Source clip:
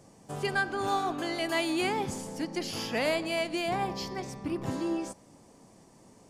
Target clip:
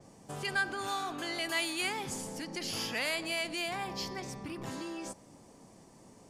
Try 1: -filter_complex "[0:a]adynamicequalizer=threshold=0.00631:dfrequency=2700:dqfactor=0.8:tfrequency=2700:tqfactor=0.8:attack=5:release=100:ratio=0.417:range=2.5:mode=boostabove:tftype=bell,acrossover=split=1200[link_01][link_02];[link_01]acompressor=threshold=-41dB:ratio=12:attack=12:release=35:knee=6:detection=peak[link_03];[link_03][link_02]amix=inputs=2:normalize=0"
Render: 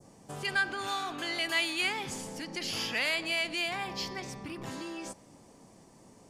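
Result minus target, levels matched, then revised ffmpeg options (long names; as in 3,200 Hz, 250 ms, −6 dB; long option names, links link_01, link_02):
8,000 Hz band −3.5 dB
-filter_complex "[0:a]adynamicequalizer=threshold=0.00631:dfrequency=11000:dqfactor=0.8:tfrequency=11000:tqfactor=0.8:attack=5:release=100:ratio=0.417:range=2.5:mode=boostabove:tftype=bell,acrossover=split=1200[link_01][link_02];[link_01]acompressor=threshold=-41dB:ratio=12:attack=12:release=35:knee=6:detection=peak[link_03];[link_03][link_02]amix=inputs=2:normalize=0"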